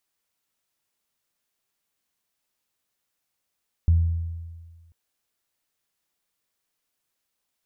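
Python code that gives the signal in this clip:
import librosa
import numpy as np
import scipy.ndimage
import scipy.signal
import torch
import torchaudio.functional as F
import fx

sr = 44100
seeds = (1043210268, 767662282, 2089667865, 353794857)

y = fx.additive(sr, length_s=1.04, hz=83.6, level_db=-13, upper_db=(-19.0,), decay_s=1.57, upper_decays_s=(1.14,))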